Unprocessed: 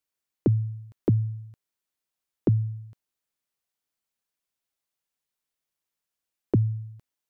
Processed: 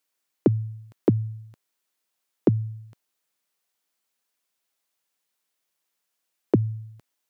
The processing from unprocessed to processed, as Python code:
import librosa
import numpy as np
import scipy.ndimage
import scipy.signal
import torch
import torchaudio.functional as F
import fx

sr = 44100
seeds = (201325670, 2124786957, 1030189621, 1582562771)

y = scipy.signal.sosfilt(scipy.signal.butter(2, 100.0, 'highpass', fs=sr, output='sos'), x)
y = fx.low_shelf(y, sr, hz=160.0, db=-11.0)
y = y * librosa.db_to_amplitude(7.5)